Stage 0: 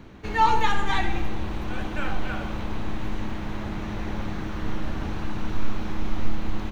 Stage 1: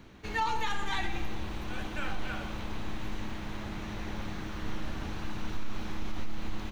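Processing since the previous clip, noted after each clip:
brickwall limiter −15 dBFS, peak gain reduction 7.5 dB
high-shelf EQ 2,100 Hz +7.5 dB
level −7.5 dB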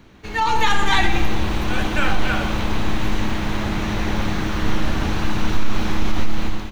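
automatic gain control gain up to 11.5 dB
level +4 dB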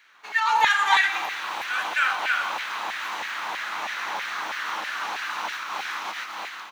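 auto-filter high-pass saw down 3.1 Hz 790–1,900 Hz
level −4 dB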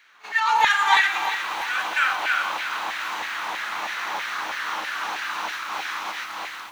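backwards echo 34 ms −16 dB
feedback echo at a low word length 349 ms, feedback 55%, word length 7 bits, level −11 dB
level +1 dB

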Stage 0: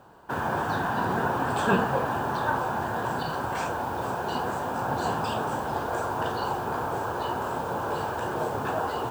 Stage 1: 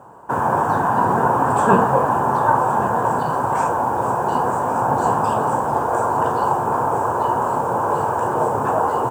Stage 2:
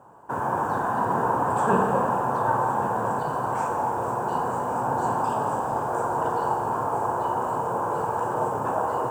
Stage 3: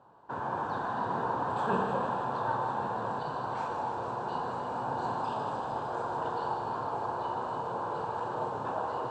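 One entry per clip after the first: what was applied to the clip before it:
octave-band graphic EQ 125/250/500/1,000/4,000/8,000 Hz +8/+5/+7/+12/−10/+11 dB; single-tap delay 1,113 ms −12.5 dB; level −1 dB
convolution reverb RT60 2.5 s, pre-delay 36 ms, DRR 4 dB; level −8 dB
low-pass with resonance 4,000 Hz, resonance Q 4.3; delay with a high-pass on its return 153 ms, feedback 77%, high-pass 2,900 Hz, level −6 dB; level −8.5 dB

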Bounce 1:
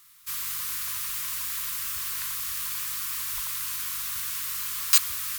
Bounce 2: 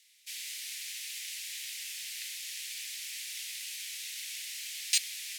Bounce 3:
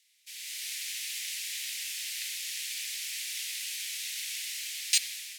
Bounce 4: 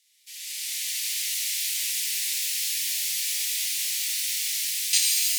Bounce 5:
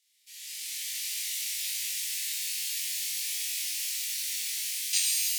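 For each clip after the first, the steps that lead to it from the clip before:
Butterworth high-pass 2,000 Hz 48 dB per octave; high-frequency loss of the air 56 metres
tape delay 84 ms, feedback 47%, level −9 dB, low-pass 1,200 Hz; automatic gain control gain up to 9 dB; level −5 dB
high-shelf EQ 2,200 Hz +8.5 dB; reverb with rising layers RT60 3.8 s, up +12 semitones, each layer −2 dB, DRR −5 dB; level −6 dB
flutter between parallel walls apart 3.7 metres, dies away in 0.29 s; level −7 dB

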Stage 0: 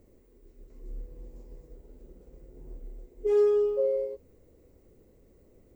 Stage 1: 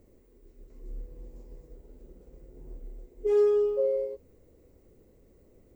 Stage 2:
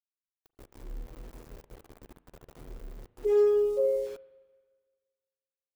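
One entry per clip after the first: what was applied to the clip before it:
no processing that can be heard
centre clipping without the shift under −45 dBFS; spring reverb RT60 1.6 s, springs 37/43 ms, chirp 60 ms, DRR 17 dB

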